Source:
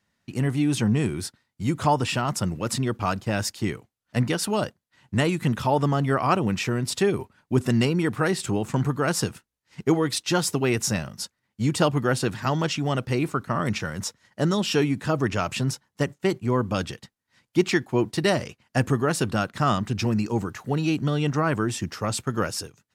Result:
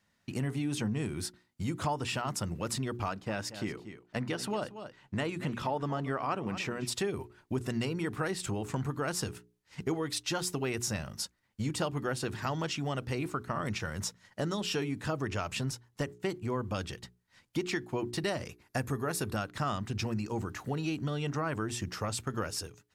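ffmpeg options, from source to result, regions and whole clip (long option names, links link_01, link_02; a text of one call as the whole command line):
ffmpeg -i in.wav -filter_complex "[0:a]asettb=1/sr,asplit=3[link_01][link_02][link_03];[link_01]atrim=end=3.084[link_04];[link_02]atrim=start=3.08:end=6.87,asetpts=PTS-STARTPTS,afade=type=in:duration=0.004:curve=qsin,afade=type=out:start_time=3.786:duration=0.004:curve=qsin,lowpass=frequency=4000:poles=1,equalizer=frequency=77:width=1.3:gain=-10.5,aecho=1:1:231:0.15,atrim=end_sample=167139[link_05];[link_03]atrim=start=6.866[link_06];[link_04][link_05]acrossfade=duration=0.004:curve1=hsin:curve2=qsin[link_07];[link_07][link_06]acrossfade=duration=0.004:curve1=qsin:curve2=hsin,asettb=1/sr,asplit=3[link_08][link_09][link_10];[link_08]atrim=end=18.454[link_11];[link_09]atrim=start=18.45:end=19.37,asetpts=PTS-STARTPTS,afade=type=in:duration=0.004:curve=qsin,afade=type=out:start_time=0.916:duration=0.004:curve=qsin,equalizer=frequency=12000:width=1.8:gain=10,bandreject=frequency=3000:width=8.6[link_12];[link_10]atrim=start=19.366[link_13];[link_11][link_12]acrossfade=duration=0.004:curve1=hsin:curve2=qsin[link_14];[link_14][link_13]acrossfade=duration=0.004:curve1=qsin:curve2=hsin,bandreject=frequency=60:width_type=h:width=6,bandreject=frequency=120:width_type=h:width=6,bandreject=frequency=180:width_type=h:width=6,bandreject=frequency=240:width_type=h:width=6,bandreject=frequency=300:width_type=h:width=6,bandreject=frequency=360:width_type=h:width=6,bandreject=frequency=420:width_type=h:width=6,asubboost=boost=3:cutoff=76,acompressor=threshold=-34dB:ratio=2.5" out.wav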